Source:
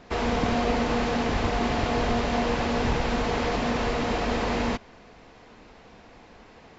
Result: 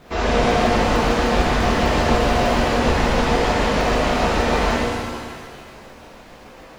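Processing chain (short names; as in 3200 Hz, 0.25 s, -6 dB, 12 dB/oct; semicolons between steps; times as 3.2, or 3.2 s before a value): crackle 460/s -51 dBFS; crackling interface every 0.15 s, samples 2048, zero, from 0.51; shimmer reverb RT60 1.9 s, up +7 st, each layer -8 dB, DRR -8 dB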